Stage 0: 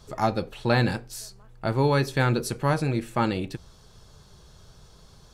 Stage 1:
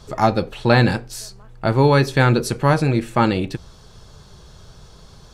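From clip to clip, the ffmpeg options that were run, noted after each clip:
-af "highshelf=f=10000:g=-7.5,volume=2.37"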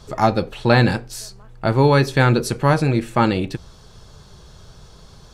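-af anull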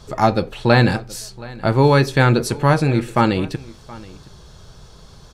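-af "aecho=1:1:723:0.0891,volume=1.12"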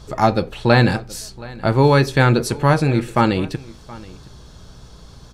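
-af "aeval=exprs='val(0)+0.00501*(sin(2*PI*60*n/s)+sin(2*PI*2*60*n/s)/2+sin(2*PI*3*60*n/s)/3+sin(2*PI*4*60*n/s)/4+sin(2*PI*5*60*n/s)/5)':c=same"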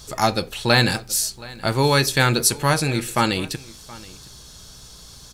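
-af "crystalizer=i=6.5:c=0,volume=0.501"

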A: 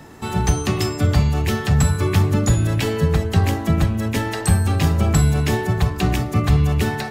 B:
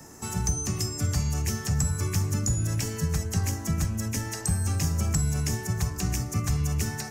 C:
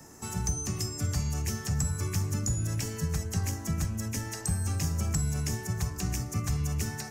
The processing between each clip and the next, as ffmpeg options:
-filter_complex "[0:a]highshelf=f=4700:t=q:w=3:g=8.5,acrossover=split=220|1200|6700[s0][s1][s2][s3];[s0]acompressor=threshold=0.158:ratio=4[s4];[s1]acompressor=threshold=0.0178:ratio=4[s5];[s2]acompressor=threshold=0.0355:ratio=4[s6];[s3]acompressor=threshold=0.0316:ratio=4[s7];[s4][s5][s6][s7]amix=inputs=4:normalize=0,volume=0.473"
-af "aeval=exprs='0.266*(cos(1*acos(clip(val(0)/0.266,-1,1)))-cos(1*PI/2))+0.00211*(cos(8*acos(clip(val(0)/0.266,-1,1)))-cos(8*PI/2))':c=same,volume=0.668"

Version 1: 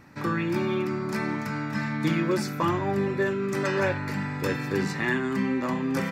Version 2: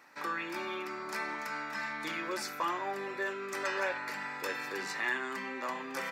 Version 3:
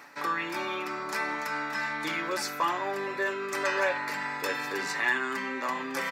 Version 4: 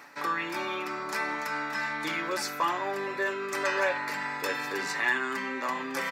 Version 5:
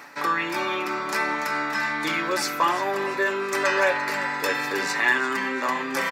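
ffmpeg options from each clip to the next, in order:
-filter_complex "[0:a]asplit=2[s0][s1];[s1]alimiter=limit=0.0841:level=0:latency=1,volume=1[s2];[s0][s2]amix=inputs=2:normalize=0,highpass=630,volume=0.398"
-af "aecho=1:1:7:0.35,areverse,acompressor=mode=upward:threshold=0.0158:ratio=2.5,areverse,volume=1.78"
-af anull
-af "aecho=1:1:343|686|1029|1372:0.188|0.0885|0.0416|0.0196,volume=2"

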